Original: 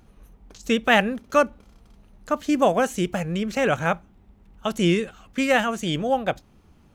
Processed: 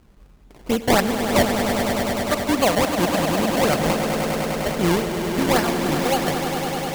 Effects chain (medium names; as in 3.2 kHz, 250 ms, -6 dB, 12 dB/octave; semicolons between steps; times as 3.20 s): decimation with a swept rate 24×, swing 100% 3.7 Hz; echo with a slow build-up 101 ms, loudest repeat 5, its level -9 dB